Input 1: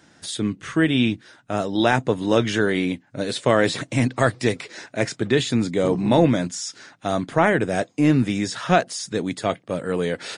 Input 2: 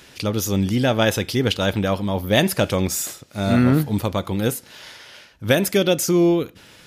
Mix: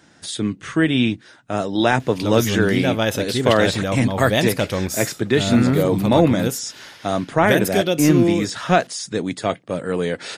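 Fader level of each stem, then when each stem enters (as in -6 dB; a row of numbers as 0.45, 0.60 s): +1.5, -2.0 dB; 0.00, 2.00 s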